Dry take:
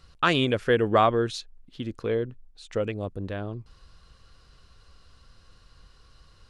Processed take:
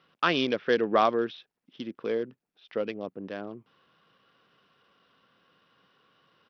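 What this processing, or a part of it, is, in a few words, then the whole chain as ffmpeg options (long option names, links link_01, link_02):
Bluetooth headset: -af "highpass=frequency=180:width=0.5412,highpass=frequency=180:width=1.3066,aresample=8000,aresample=44100,volume=-2.5dB" -ar 44100 -c:a sbc -b:a 64k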